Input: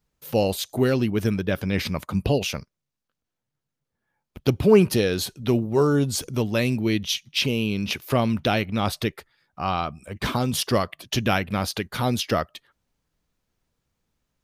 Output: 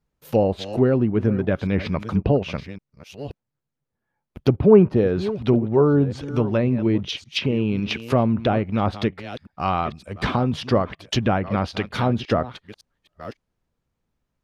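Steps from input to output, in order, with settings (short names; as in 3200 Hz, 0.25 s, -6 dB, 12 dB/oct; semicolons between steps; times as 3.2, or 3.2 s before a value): reverse delay 0.557 s, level -14 dB; in parallel at -7 dB: crossover distortion -42 dBFS; on the sum: treble ducked by the level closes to 1100 Hz, closed at -15 dBFS; mismatched tape noise reduction decoder only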